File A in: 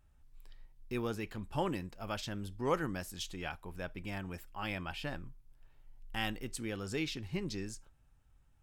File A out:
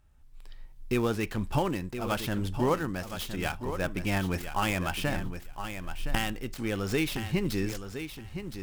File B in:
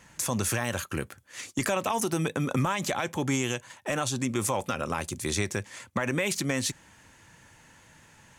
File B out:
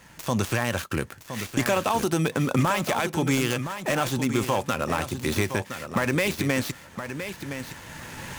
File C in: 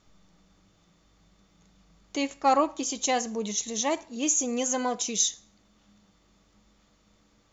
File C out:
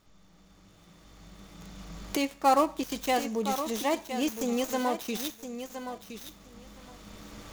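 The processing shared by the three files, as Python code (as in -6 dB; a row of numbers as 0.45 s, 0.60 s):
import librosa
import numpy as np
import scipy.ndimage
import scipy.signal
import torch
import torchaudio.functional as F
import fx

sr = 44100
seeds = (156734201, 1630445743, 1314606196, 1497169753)

p1 = fx.dead_time(x, sr, dead_ms=0.079)
p2 = fx.recorder_agc(p1, sr, target_db=-20.5, rise_db_per_s=9.1, max_gain_db=30)
p3 = p2 + fx.echo_feedback(p2, sr, ms=1016, feedback_pct=15, wet_db=-9.5, dry=0)
y = librosa.util.normalize(p3) * 10.0 ** (-9 / 20.0)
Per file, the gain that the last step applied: +3.0 dB, +4.0 dB, -0.5 dB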